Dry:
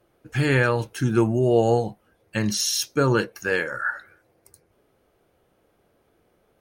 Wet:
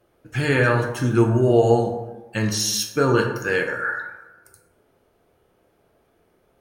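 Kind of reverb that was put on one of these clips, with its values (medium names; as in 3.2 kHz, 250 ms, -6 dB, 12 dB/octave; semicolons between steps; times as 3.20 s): plate-style reverb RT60 1.1 s, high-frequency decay 0.45×, DRR 2.5 dB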